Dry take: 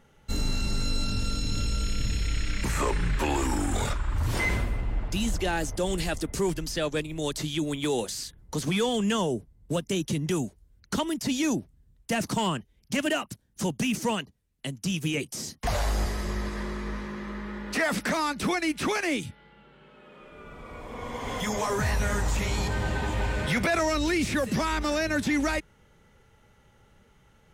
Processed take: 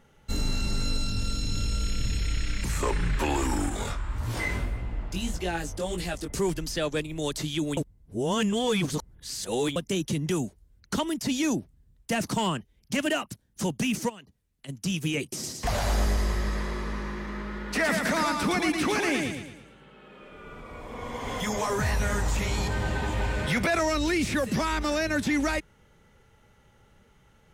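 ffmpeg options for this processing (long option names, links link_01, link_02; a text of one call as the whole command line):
ffmpeg -i in.wav -filter_complex "[0:a]asettb=1/sr,asplit=3[link_01][link_02][link_03];[link_01]atrim=end=0.974[link_04];[link_02]atrim=start=0.97:end=2.83,asetpts=PTS-STARTPTS,afade=type=in:duration=0.004:curve=qsin,afade=type=out:start_time=1.856:duration=0.004:curve=qsin,acrossover=split=190|3000[link_05][link_06][link_07];[link_06]acompressor=threshold=-37dB:ratio=6:attack=3.2:release=140:knee=2.83:detection=peak[link_08];[link_05][link_08][link_07]amix=inputs=3:normalize=0[link_09];[link_03]atrim=start=2.826[link_10];[link_04][link_09]acrossfade=duration=0.004:curve1=hsin:curve2=qsin[link_11];[link_11][link_10]acrossfade=duration=0.004:curve1=qsin:curve2=hsin,asettb=1/sr,asplit=3[link_12][link_13][link_14];[link_12]atrim=end=3.694[link_15];[link_13]atrim=start=3.69:end=6.3,asetpts=PTS-STARTPTS,afade=type=in:duration=0.004:curve=qsin,afade=type=out:start_time=2.606:duration=0.004:curve=qsin,flanger=delay=16.5:depth=5.3:speed=1.7[link_16];[link_14]atrim=start=6.296[link_17];[link_15][link_16]acrossfade=duration=0.004:curve1=hsin:curve2=qsin[link_18];[link_18][link_17]acrossfade=duration=0.004:curve1=qsin:curve2=hsin,asplit=3[link_19][link_20][link_21];[link_19]afade=type=out:start_time=14.08:duration=0.02[link_22];[link_20]acompressor=threshold=-45dB:ratio=4:attack=3.2:release=140:knee=1:detection=peak,afade=type=in:start_time=14.08:duration=0.02,afade=type=out:start_time=14.68:duration=0.02[link_23];[link_21]afade=type=in:start_time=14.68:duration=0.02[link_24];[link_22][link_23][link_24]amix=inputs=3:normalize=0,asettb=1/sr,asplit=3[link_25][link_26][link_27];[link_25]atrim=end=15.214[link_28];[link_26]atrim=start=15.21:end=20.6,asetpts=PTS-STARTPTS,afade=type=in:duration=0.004:curve=qsin,afade=type=out:start_time=5.386:duration=0.004:curve=qsin,aecho=1:1:113|226|339|452|565|678:0.631|0.278|0.122|0.0537|0.0236|0.0104,atrim=end_sample=237699[link_29];[link_27]atrim=start=20.596[link_30];[link_28][link_29]acrossfade=duration=0.004:curve1=hsin:curve2=qsin[link_31];[link_31][link_30]acrossfade=duration=0.004:curve1=qsin:curve2=hsin,asplit=3[link_32][link_33][link_34];[link_32]atrim=end=7.772[link_35];[link_33]atrim=start=7.768:end=9.762,asetpts=PTS-STARTPTS,areverse[link_36];[link_34]atrim=start=9.758[link_37];[link_35][link_36]acrossfade=duration=0.004:curve1=hsin:curve2=hsin[link_38];[link_38][link_37]acrossfade=duration=0.004:curve1=hsin:curve2=hsin" out.wav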